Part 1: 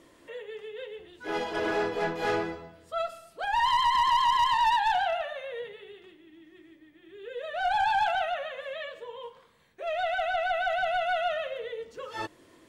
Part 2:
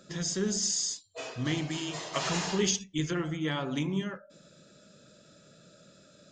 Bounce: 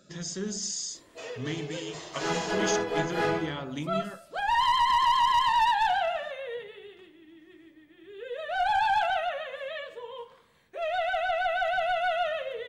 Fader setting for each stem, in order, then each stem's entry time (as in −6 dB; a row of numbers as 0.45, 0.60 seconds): +0.5, −3.5 decibels; 0.95, 0.00 seconds